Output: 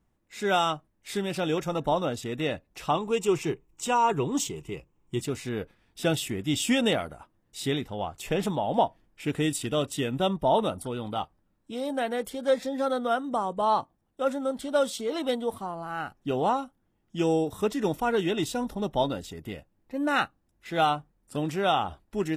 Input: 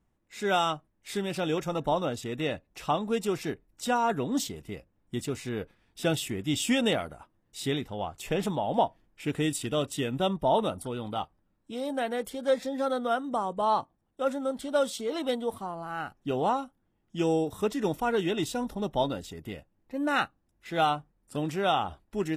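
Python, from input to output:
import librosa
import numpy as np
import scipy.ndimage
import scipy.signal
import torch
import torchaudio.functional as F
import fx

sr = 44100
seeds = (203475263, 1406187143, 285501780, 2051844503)

y = fx.ripple_eq(x, sr, per_octave=0.71, db=9, at=(2.95, 5.21))
y = y * librosa.db_to_amplitude(1.5)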